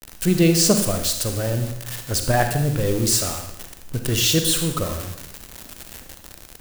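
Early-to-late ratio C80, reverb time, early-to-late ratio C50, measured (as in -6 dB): 9.0 dB, 0.80 s, 6.5 dB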